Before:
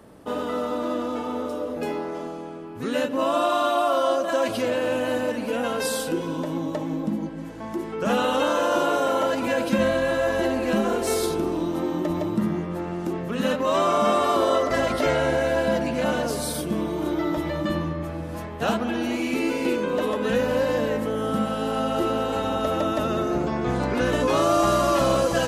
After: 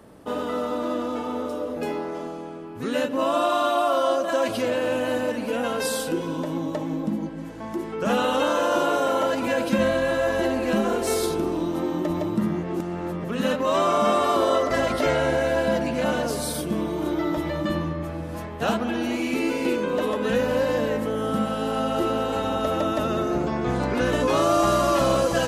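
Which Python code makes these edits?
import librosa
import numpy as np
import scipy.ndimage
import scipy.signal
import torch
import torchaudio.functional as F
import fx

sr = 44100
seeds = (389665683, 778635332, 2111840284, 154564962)

y = fx.edit(x, sr, fx.reverse_span(start_s=12.63, length_s=0.61), tone=tone)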